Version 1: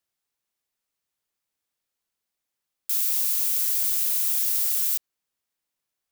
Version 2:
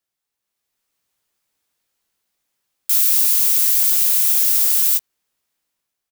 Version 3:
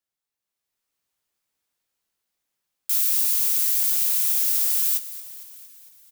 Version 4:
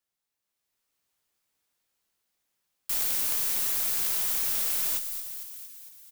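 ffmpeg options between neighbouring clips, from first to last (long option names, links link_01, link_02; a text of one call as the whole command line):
ffmpeg -i in.wav -filter_complex "[0:a]dynaudnorm=framelen=190:gausssize=7:maxgain=9dB,asplit=2[link_01][link_02];[link_02]adelay=17,volume=-8dB[link_03];[link_01][link_03]amix=inputs=2:normalize=0" out.wav
ffmpeg -i in.wav -filter_complex "[0:a]asplit=7[link_01][link_02][link_03][link_04][link_05][link_06][link_07];[link_02]adelay=228,afreqshift=-150,volume=-16dB[link_08];[link_03]adelay=456,afreqshift=-300,volume=-20dB[link_09];[link_04]adelay=684,afreqshift=-450,volume=-24dB[link_10];[link_05]adelay=912,afreqshift=-600,volume=-28dB[link_11];[link_06]adelay=1140,afreqshift=-750,volume=-32.1dB[link_12];[link_07]adelay=1368,afreqshift=-900,volume=-36.1dB[link_13];[link_01][link_08][link_09][link_10][link_11][link_12][link_13]amix=inputs=7:normalize=0,volume=-6dB" out.wav
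ffmpeg -i in.wav -af "aeval=exprs='0.473*(cos(1*acos(clip(val(0)/0.473,-1,1)))-cos(1*PI/2))+0.0841*(cos(6*acos(clip(val(0)/0.473,-1,1)))-cos(6*PI/2))':channel_layout=same,aeval=exprs='clip(val(0),-1,0.0422)':channel_layout=same,volume=1.5dB" out.wav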